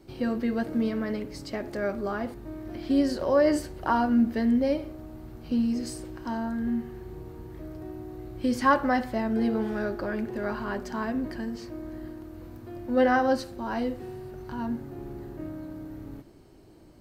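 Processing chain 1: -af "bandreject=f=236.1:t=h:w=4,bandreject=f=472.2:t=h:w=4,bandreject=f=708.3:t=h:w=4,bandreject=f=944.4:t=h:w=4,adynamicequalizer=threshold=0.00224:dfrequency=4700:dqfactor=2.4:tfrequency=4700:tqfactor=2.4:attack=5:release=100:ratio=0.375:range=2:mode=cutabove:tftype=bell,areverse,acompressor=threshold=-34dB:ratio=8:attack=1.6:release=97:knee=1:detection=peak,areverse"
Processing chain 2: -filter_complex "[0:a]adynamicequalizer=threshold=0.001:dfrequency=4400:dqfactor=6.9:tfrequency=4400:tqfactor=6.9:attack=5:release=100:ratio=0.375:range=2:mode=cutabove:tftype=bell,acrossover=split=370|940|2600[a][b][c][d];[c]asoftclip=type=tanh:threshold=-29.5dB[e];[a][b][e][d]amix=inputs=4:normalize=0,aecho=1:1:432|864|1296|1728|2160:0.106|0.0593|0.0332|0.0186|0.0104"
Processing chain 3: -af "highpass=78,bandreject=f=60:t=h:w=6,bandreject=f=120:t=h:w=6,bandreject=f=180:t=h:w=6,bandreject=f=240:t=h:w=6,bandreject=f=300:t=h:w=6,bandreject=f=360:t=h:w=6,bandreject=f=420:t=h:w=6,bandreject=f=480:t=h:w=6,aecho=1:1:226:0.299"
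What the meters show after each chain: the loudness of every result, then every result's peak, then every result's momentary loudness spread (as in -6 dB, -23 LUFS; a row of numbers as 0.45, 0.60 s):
-39.5, -28.5, -28.5 LUFS; -27.0, -11.5, -8.5 dBFS; 5, 17, 19 LU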